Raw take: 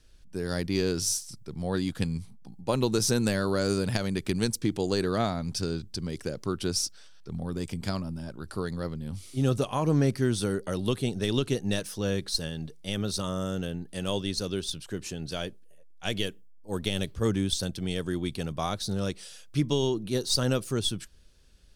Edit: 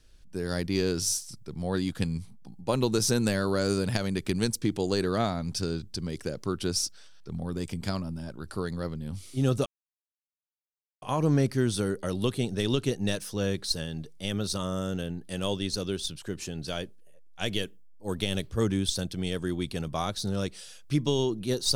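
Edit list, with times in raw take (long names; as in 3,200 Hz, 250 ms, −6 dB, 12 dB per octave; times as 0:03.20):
0:09.66: splice in silence 1.36 s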